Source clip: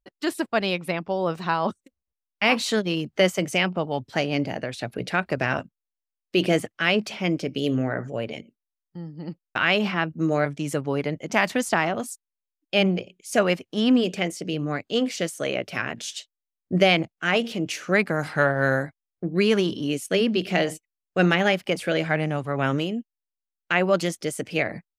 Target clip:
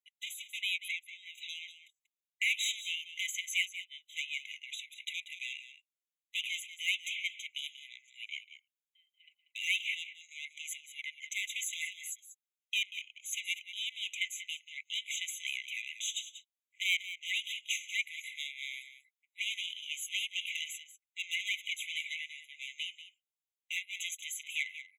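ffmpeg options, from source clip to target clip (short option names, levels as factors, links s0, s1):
-af "asoftclip=type=tanh:threshold=0.0891,aecho=1:1:188:0.237,afftfilt=real='re*eq(mod(floor(b*sr/1024/2000),2),1)':imag='im*eq(mod(floor(b*sr/1024/2000),2),1)':win_size=1024:overlap=0.75"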